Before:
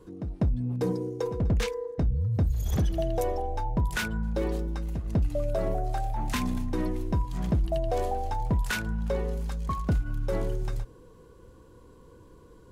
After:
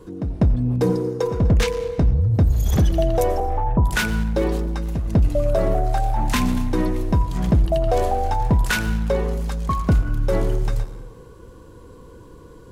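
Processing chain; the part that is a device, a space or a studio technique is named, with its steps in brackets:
0:03.40–0:03.83: Butterworth low-pass 1,300 Hz 72 dB per octave
saturated reverb return (on a send at −8.5 dB: convolution reverb RT60 1.0 s, pre-delay 81 ms + soft clipping −30 dBFS, distortion −8 dB)
on the sum: level +8.5 dB

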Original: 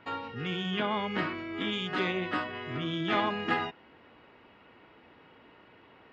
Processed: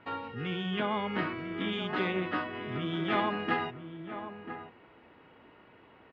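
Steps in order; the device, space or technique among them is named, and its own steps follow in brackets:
shout across a valley (high-frequency loss of the air 180 metres; slap from a distant wall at 170 metres, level −10 dB)

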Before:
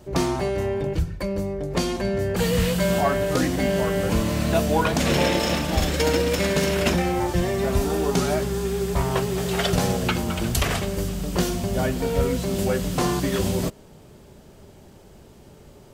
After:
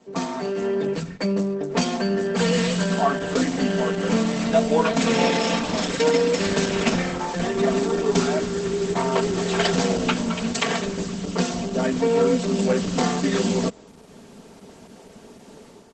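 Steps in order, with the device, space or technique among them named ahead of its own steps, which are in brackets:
comb filter 4.4 ms, depth 96%
0:01.55–0:02.81: dynamic equaliser 490 Hz, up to −5 dB, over −32 dBFS, Q 4.5
video call (high-pass filter 170 Hz 24 dB per octave; automatic gain control gain up to 9 dB; level −5.5 dB; Opus 12 kbit/s 48,000 Hz)

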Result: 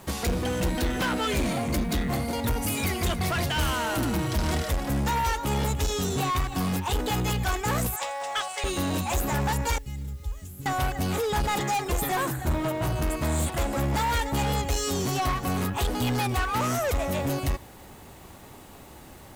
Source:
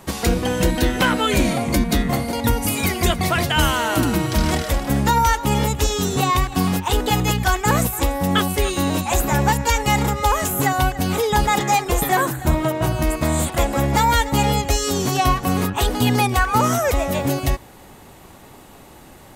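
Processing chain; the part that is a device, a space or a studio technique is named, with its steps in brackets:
0:07.96–0:08.64: elliptic band-pass filter 630–8,100 Hz, stop band 40 dB
0:09.78–0:10.66: guitar amp tone stack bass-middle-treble 10-0-1
open-reel tape (soft clipping −19.5 dBFS, distortion −9 dB; parametric band 74 Hz +4.5 dB 0.9 octaves; white noise bed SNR 34 dB)
level −3.5 dB

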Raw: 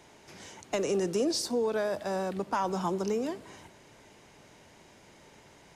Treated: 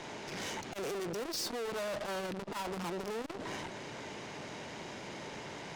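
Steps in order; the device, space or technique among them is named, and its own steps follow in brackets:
valve radio (band-pass filter 110–5,800 Hz; tube saturation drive 50 dB, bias 0.5; saturating transformer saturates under 280 Hz)
level +15 dB

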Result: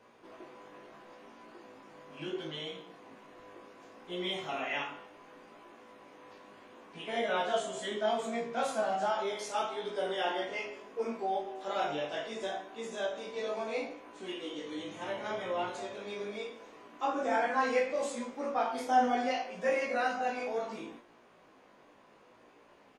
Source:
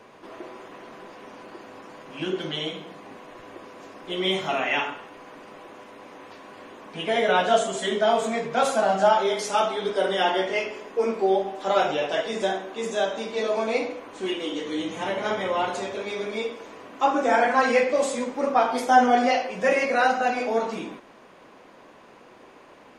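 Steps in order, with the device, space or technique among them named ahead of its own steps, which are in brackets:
double-tracked vocal (double-tracking delay 34 ms −8 dB; chorus effect 0.71 Hz, delay 17 ms, depth 3 ms)
level −8 dB

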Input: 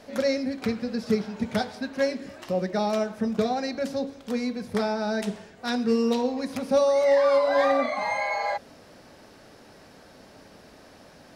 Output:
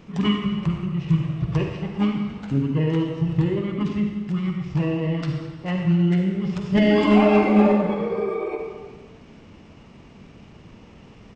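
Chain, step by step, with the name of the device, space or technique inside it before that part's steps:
monster voice (pitch shifter −5 semitones; formants moved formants −6 semitones; low-shelf EQ 200 Hz +7 dB; convolution reverb RT60 1.4 s, pre-delay 42 ms, DRR 2.5 dB)

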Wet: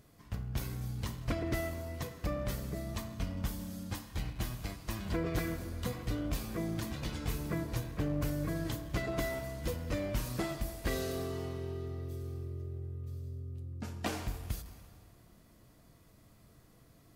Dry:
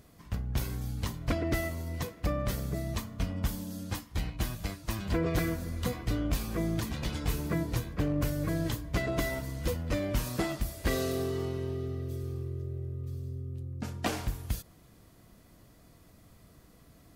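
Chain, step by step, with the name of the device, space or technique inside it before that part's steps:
saturated reverb return (on a send at −6 dB: convolution reverb RT60 1.8 s, pre-delay 4 ms + soft clipping −31.5 dBFS, distortion −11 dB)
on the sum: level −4.5 dB

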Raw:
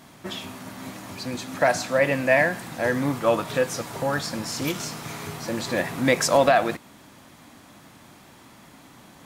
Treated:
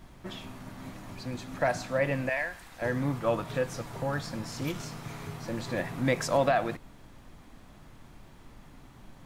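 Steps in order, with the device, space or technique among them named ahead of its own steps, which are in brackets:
0:02.29–0:02.82: high-pass filter 1,400 Hz 6 dB per octave
car interior (parametric band 120 Hz +7 dB 0.89 octaves; high-shelf EQ 3,800 Hz −6 dB; brown noise bed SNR 18 dB)
level −7 dB

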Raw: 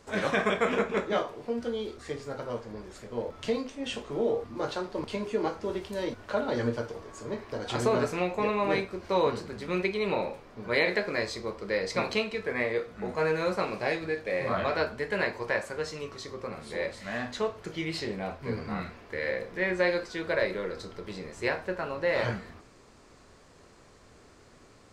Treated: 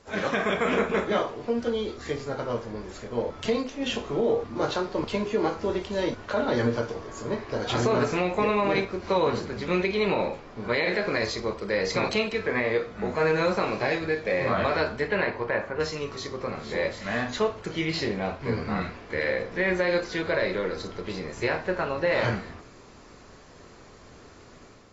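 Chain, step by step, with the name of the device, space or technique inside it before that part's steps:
0:15.07–0:15.79: low-pass filter 4,200 Hz → 1,800 Hz 12 dB per octave
low-bitrate web radio (automatic gain control gain up to 5 dB; brickwall limiter −15 dBFS, peak gain reduction 8 dB; AAC 24 kbit/s 22,050 Hz)

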